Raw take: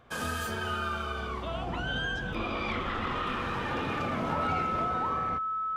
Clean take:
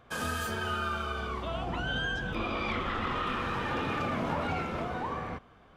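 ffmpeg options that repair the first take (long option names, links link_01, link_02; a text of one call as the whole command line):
ffmpeg -i in.wav -af "bandreject=frequency=1300:width=30" out.wav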